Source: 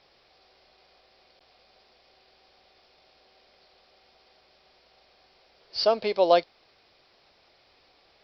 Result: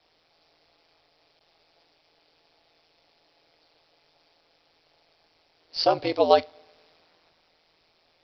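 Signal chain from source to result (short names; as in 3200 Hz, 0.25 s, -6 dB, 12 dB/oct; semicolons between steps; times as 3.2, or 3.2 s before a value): two-slope reverb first 0.23 s, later 1.5 s, from -19 dB, DRR 18.5 dB; ring modulator 82 Hz; three-band expander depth 40%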